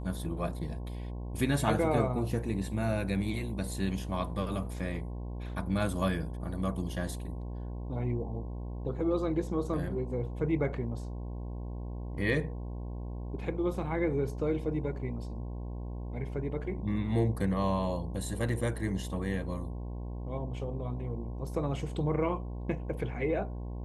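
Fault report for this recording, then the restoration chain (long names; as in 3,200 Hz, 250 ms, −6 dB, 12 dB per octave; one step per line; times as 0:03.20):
mains buzz 60 Hz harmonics 18 −38 dBFS
0:18.49: drop-out 3.1 ms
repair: hum removal 60 Hz, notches 18
repair the gap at 0:18.49, 3.1 ms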